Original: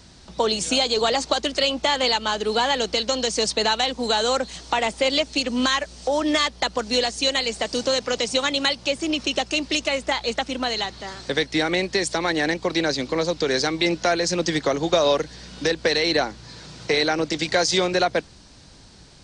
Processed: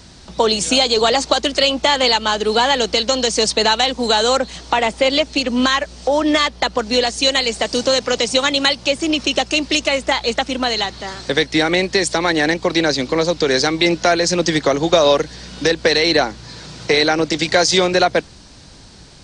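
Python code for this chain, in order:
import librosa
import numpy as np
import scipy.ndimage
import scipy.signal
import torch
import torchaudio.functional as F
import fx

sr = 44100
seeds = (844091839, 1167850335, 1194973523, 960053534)

y = fx.high_shelf(x, sr, hz=5400.0, db=-7.0, at=(4.37, 7.07))
y = y * 10.0 ** (6.0 / 20.0)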